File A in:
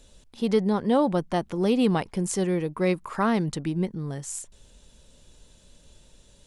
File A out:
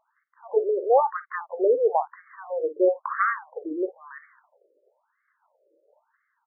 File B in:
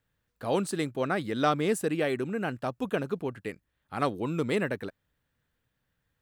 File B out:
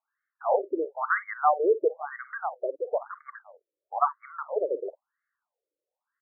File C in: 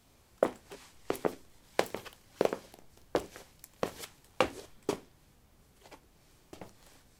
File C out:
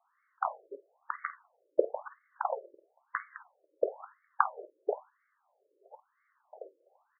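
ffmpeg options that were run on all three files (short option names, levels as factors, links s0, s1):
-filter_complex "[0:a]agate=range=0.447:threshold=0.00316:ratio=16:detection=peak,equalizer=f=190:t=o:w=0.81:g=-14,asplit=2[s0][s1];[s1]adelay=49,volume=0.2[s2];[s0][s2]amix=inputs=2:normalize=0,afftfilt=real='re*between(b*sr/1024,420*pow(1600/420,0.5+0.5*sin(2*PI*1*pts/sr))/1.41,420*pow(1600/420,0.5+0.5*sin(2*PI*1*pts/sr))*1.41)':imag='im*between(b*sr/1024,420*pow(1600/420,0.5+0.5*sin(2*PI*1*pts/sr))/1.41,420*pow(1600/420,0.5+0.5*sin(2*PI*1*pts/sr))*1.41)':win_size=1024:overlap=0.75,volume=2.51"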